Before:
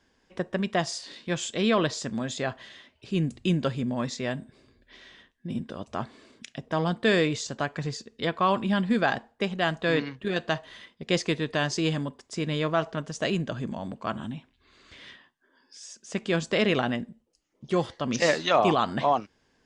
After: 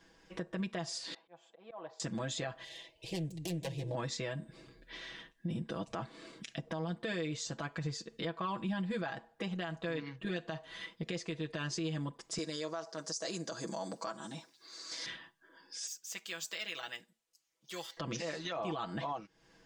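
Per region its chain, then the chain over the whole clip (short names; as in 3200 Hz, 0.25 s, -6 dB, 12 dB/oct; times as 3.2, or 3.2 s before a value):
1.14–2 band-pass 790 Hz, Q 4.4 + auto swell 0.522 s
2.64–3.95 self-modulated delay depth 0.36 ms + fixed phaser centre 560 Hz, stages 4 + delay with a stepping band-pass 0.16 s, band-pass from 210 Hz, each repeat 0.7 oct, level -11.5 dB
12.38–15.06 HPF 350 Hz + resonant high shelf 3900 Hz +10 dB, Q 3
15.87–17.97 differentiator + decimation joined by straight lines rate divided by 2×
whole clip: comb 6.1 ms, depth 84%; compressor 4:1, threshold -37 dBFS; limiter -29.5 dBFS; gain +1.5 dB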